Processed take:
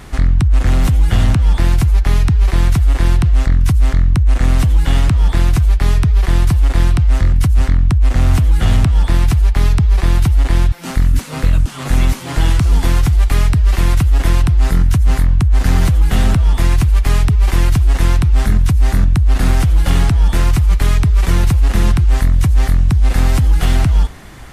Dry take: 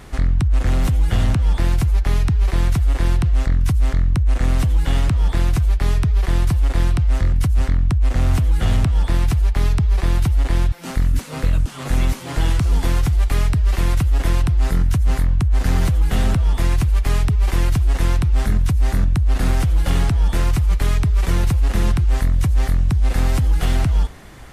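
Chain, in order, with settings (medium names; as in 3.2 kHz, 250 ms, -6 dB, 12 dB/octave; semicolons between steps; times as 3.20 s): peaking EQ 500 Hz -3 dB 0.77 oct; trim +5 dB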